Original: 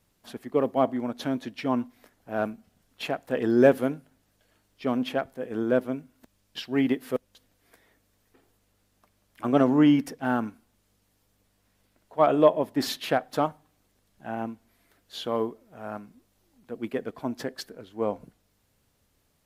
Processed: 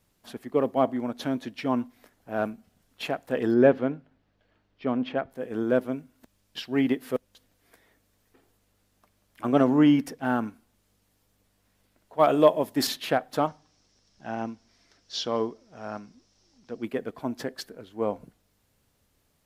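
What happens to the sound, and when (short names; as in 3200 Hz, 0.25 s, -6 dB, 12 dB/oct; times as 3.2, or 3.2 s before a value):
3.54–5.31 air absorption 220 m
12.19–12.87 high shelf 4100 Hz +10.5 dB
13.47–16.83 synth low-pass 5500 Hz, resonance Q 6.3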